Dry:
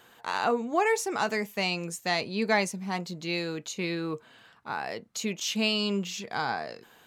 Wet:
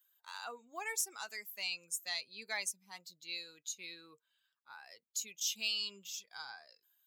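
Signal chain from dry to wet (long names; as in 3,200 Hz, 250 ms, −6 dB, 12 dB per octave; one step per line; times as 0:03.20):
spectral dynamics exaggerated over time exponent 1.5
first difference
gain into a clipping stage and back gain 25.5 dB
level +1.5 dB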